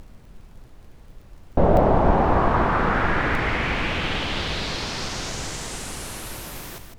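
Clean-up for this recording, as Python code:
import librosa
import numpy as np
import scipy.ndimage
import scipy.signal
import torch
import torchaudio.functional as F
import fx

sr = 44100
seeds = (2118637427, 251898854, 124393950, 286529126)

y = fx.fix_declick_ar(x, sr, threshold=6.5)
y = fx.fix_interpolate(y, sr, at_s=(1.77, 3.35), length_ms=1.6)
y = fx.noise_reduce(y, sr, print_start_s=0.65, print_end_s=1.15, reduce_db=22.0)
y = fx.fix_echo_inverse(y, sr, delay_ms=156, level_db=-7.5)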